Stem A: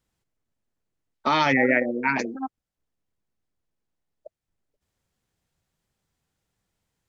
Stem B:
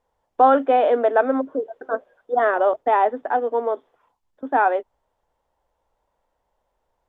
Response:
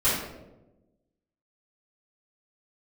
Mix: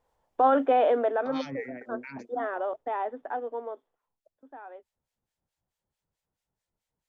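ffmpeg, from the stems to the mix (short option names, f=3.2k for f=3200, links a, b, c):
-filter_complex "[0:a]acrossover=split=1300[a][b];[a]aeval=exprs='val(0)*(1-1/2+1/2*cos(2*PI*4.6*n/s))':c=same[c];[b]aeval=exprs='val(0)*(1-1/2-1/2*cos(2*PI*4.6*n/s))':c=same[d];[c][d]amix=inputs=2:normalize=0,alimiter=limit=-20.5dB:level=0:latency=1:release=114,acrossover=split=280|3000[e][f][g];[f]acompressor=threshold=-38dB:ratio=4[h];[e][h][g]amix=inputs=3:normalize=0,volume=-5dB[i];[1:a]alimiter=limit=-12.5dB:level=0:latency=1:release=34,volume=-1.5dB,afade=t=out:st=0.73:d=0.75:silence=0.354813,afade=t=out:st=3.39:d=0.69:silence=0.223872[j];[i][j]amix=inputs=2:normalize=0"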